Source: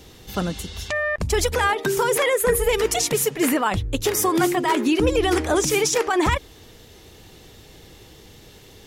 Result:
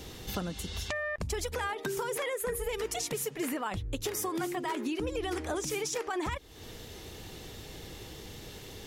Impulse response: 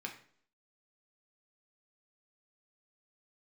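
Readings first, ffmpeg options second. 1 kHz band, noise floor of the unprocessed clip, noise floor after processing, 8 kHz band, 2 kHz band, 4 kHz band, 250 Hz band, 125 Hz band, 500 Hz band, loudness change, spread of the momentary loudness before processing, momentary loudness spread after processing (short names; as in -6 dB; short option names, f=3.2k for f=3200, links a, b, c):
-13.5 dB, -47 dBFS, -47 dBFS, -12.5 dB, -12.5 dB, -11.5 dB, -13.0 dB, -11.5 dB, -13.5 dB, -13.5 dB, 8 LU, 12 LU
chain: -af "acompressor=threshold=-35dB:ratio=4,volume=1dB"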